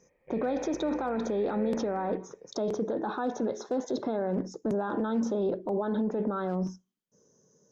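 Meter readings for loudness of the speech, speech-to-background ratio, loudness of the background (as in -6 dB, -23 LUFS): -31.0 LUFS, 13.5 dB, -44.5 LUFS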